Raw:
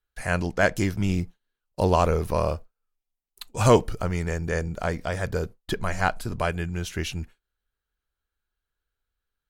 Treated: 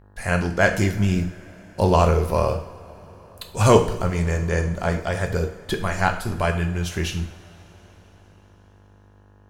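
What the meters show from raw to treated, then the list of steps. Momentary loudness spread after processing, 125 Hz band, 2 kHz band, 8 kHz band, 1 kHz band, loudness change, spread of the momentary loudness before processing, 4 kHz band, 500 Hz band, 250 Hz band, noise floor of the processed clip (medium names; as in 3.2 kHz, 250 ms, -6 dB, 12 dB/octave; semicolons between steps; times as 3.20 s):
14 LU, +5.0 dB, +3.5 dB, +3.5 dB, +3.5 dB, +3.5 dB, 13 LU, +3.5 dB, +3.5 dB, +4.0 dB, -52 dBFS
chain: mains buzz 50 Hz, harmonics 37, -53 dBFS -6 dB/octave; two-slope reverb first 0.55 s, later 4.9 s, from -21 dB, DRR 4 dB; trim +2 dB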